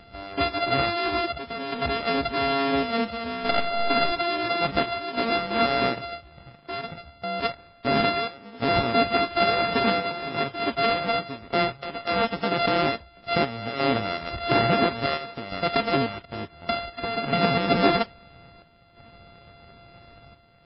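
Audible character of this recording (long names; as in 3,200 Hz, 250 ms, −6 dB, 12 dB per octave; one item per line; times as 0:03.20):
a buzz of ramps at a fixed pitch in blocks of 64 samples
chopped level 0.58 Hz, depth 60%, duty 80%
MP3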